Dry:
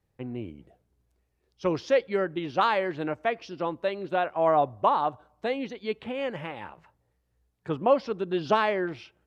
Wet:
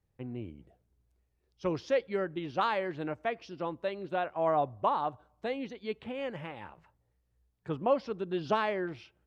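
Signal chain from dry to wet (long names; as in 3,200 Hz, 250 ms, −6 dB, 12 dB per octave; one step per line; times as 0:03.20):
low-shelf EQ 130 Hz +6.5 dB
level −6 dB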